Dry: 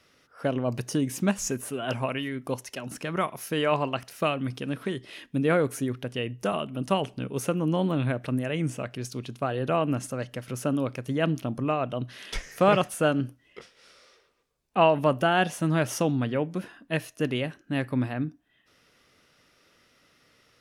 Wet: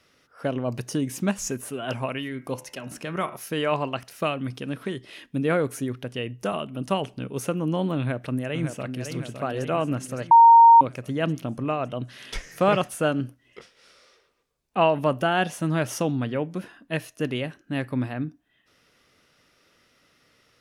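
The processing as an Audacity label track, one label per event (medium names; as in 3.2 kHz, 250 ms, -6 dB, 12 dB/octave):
2.270000	3.370000	de-hum 73.01 Hz, notches 39
7.980000	9.080000	echo throw 560 ms, feedback 60%, level -7 dB
10.310000	10.810000	bleep 925 Hz -8 dBFS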